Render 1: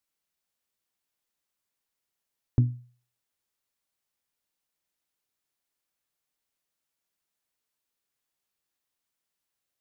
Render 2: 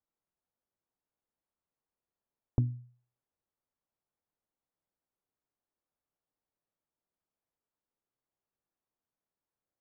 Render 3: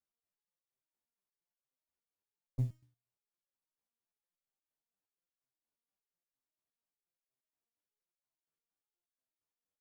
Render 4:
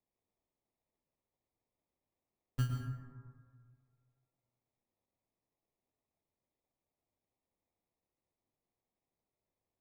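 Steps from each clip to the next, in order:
low-pass 1 kHz; compression 2:1, threshold -28 dBFS, peak gain reduction 6 dB
short-mantissa float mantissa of 4-bit; resonator arpeggio 8.5 Hz 73–560 Hz; trim +3 dB
sample-rate reducer 1.5 kHz, jitter 0%; on a send at -2.5 dB: reverberation RT60 1.8 s, pre-delay 98 ms

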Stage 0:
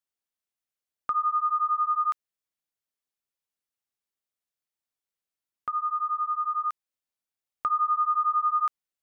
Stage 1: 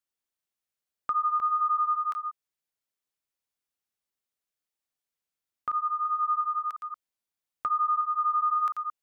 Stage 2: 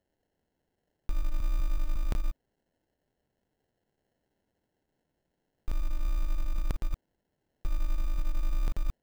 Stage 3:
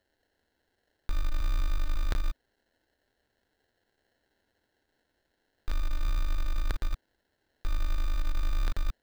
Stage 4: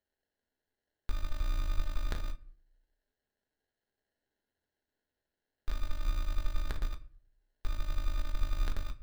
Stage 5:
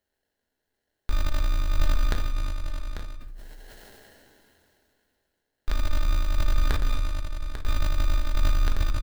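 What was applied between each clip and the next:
chunks repeated in reverse 178 ms, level -8 dB; peak limiter -20.5 dBFS, peak gain reduction 4.5 dB
in parallel at 0 dB: compressor with a negative ratio -33 dBFS, ratio -0.5; on the sum: sample-rate reducer 1.2 kHz, jitter 0%; trim -1 dB
fifteen-band graphic EQ 160 Hz -11 dB, 1.6 kHz +9 dB, 4 kHz +9 dB; in parallel at -8 dB: wavefolder -28.5 dBFS
on a send at -6 dB: reverberation RT60 0.55 s, pre-delay 5 ms; on the sum: upward expansion 1.5:1, over -46 dBFS; trim -1.5 dB
delay 844 ms -9.5 dB; decay stretcher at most 20 dB/s; trim +6.5 dB

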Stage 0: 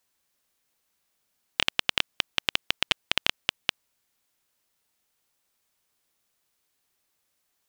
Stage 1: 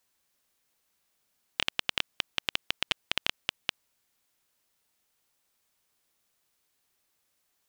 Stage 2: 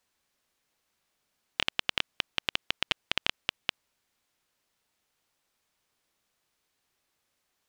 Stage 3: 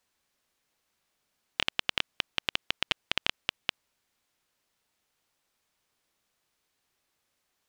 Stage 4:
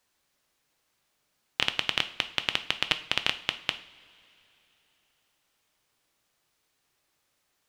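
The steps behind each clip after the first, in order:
peak limiter -6.5 dBFS, peak gain reduction 5 dB
treble shelf 8 kHz -10 dB; trim +1.5 dB
no audible change
two-slope reverb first 0.46 s, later 3.5 s, from -20 dB, DRR 9 dB; trim +2.5 dB

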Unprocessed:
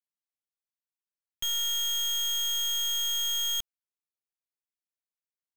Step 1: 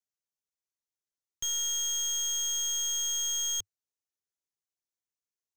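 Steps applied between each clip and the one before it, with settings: fifteen-band graphic EQ 100 Hz +9 dB, 400 Hz +6 dB, 2.5 kHz -4 dB, 6.3 kHz +10 dB, 16 kHz -4 dB; trim -5 dB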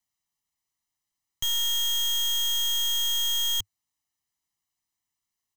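comb 1 ms, depth 79%; trim +6.5 dB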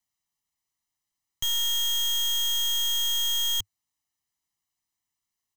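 no audible change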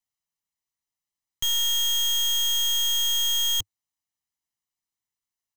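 waveshaping leveller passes 2; trim -1.5 dB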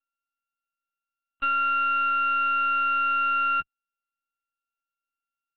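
sorted samples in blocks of 32 samples; LPC vocoder at 8 kHz pitch kept

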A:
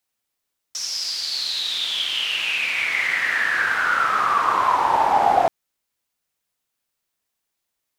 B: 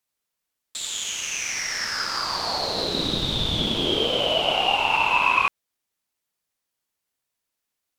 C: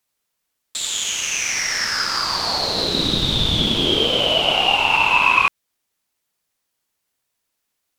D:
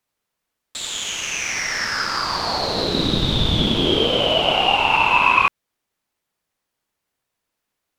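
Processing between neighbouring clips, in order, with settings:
ring modulator 1.8 kHz
dynamic bell 650 Hz, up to -4 dB, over -34 dBFS, Q 0.77; trim +6 dB
treble shelf 3 kHz -9 dB; trim +2.5 dB

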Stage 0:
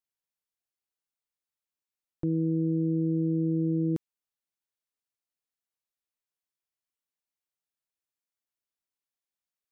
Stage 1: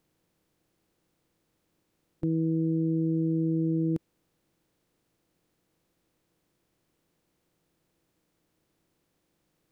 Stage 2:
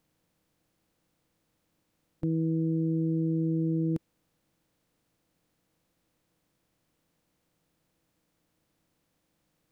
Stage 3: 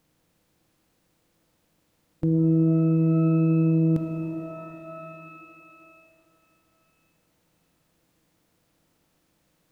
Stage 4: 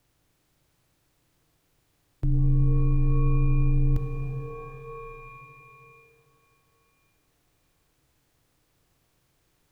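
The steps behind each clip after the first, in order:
spectral levelling over time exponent 0.6
peaking EQ 380 Hz -10.5 dB 0.21 oct
pitch-shifted reverb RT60 3.2 s, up +12 st, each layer -8 dB, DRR 5 dB; trim +5.5 dB
frequency shift -190 Hz

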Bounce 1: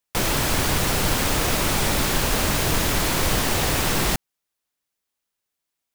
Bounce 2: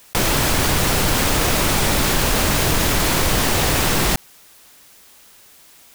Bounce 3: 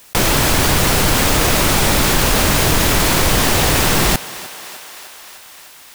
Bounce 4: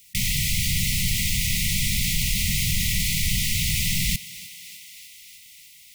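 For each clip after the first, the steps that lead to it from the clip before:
level flattener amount 50%; trim +2.5 dB
thinning echo 304 ms, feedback 74%, high-pass 370 Hz, level -16.5 dB; trim +3.5 dB
brick-wall FIR band-stop 220–1900 Hz; trim -7.5 dB

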